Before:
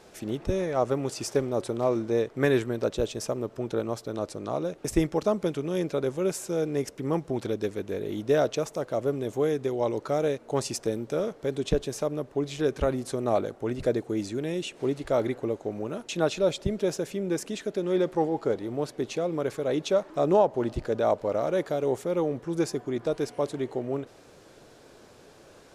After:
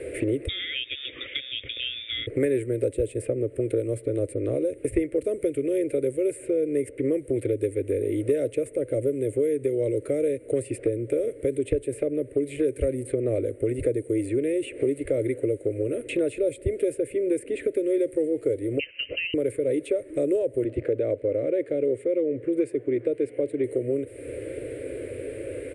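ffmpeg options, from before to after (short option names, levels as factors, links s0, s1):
-filter_complex "[0:a]asettb=1/sr,asplit=3[s0][s1][s2];[s0]atrim=end=0.484[s3];[s1]atrim=start=0.48:end=2.27,asetpts=PTS-STARTPTS,afade=t=in:d=0.004:c=qsin,afade=t=out:st=1.786:d=0.004:c=qsin,lowpass=f=3200:t=q:w=0.5098,lowpass=f=3200:t=q:w=0.6013,lowpass=f=3200:t=q:w=0.9,lowpass=f=3200:t=q:w=2.563,afreqshift=-3800[s4];[s2]atrim=start=2.266[s5];[s3][s4]acrossfade=d=0.004:c1=hsin:c2=qsin[s6];[s6][s5]acrossfade=d=0.004:c1=qsin:c2=hsin,asettb=1/sr,asplit=3[s7][s8][s9];[s7]atrim=end=18.794[s10];[s8]atrim=start=18.79:end=19.34,asetpts=PTS-STARTPTS,afade=t=in:d=0.004:c=qsin,afade=t=out:st=0.546:d=0.004:c=qsin,lowpass=f=2700:t=q:w=0.5098,lowpass=f=2700:t=q:w=0.6013,lowpass=f=2700:t=q:w=0.9,lowpass=f=2700:t=q:w=2.563,afreqshift=-3200[s11];[s9]atrim=start=19.336[s12];[s10][s11]acrossfade=d=0.004:c1=hsin:c2=qsin[s13];[s13][s12]acrossfade=d=0.004:c1=qsin:c2=hsin,asettb=1/sr,asplit=3[s14][s15][s16];[s14]atrim=end=20.644[s17];[s15]atrim=start=20.64:end=23.64,asetpts=PTS-STARTPTS,afade=t=in:d=0.004:c=qsin,afade=t=out:st=2.996:d=0.004:c=qsin,highpass=120,lowpass=3300[s18];[s16]atrim=start=23.636[s19];[s17][s18]acrossfade=d=0.004:c1=hsin:c2=qsin[s20];[s20][s19]acrossfade=d=0.004:c1=qsin:c2=hsin,firequalizer=gain_entry='entry(120,0);entry(190,-25);entry(270,7);entry(530,15);entry(810,-20);entry(2100,13);entry(3400,-6);entry(6000,-22);entry(9000,14);entry(13000,-13)':delay=0.05:min_phase=1,acrossover=split=290|5400[s21][s22][s23];[s21]acompressor=threshold=0.00562:ratio=4[s24];[s22]acompressor=threshold=0.0126:ratio=4[s25];[s23]acompressor=threshold=0.002:ratio=4[s26];[s24][s25][s26]amix=inputs=3:normalize=0,equalizer=f=91:t=o:w=2.6:g=13.5,volume=2.11"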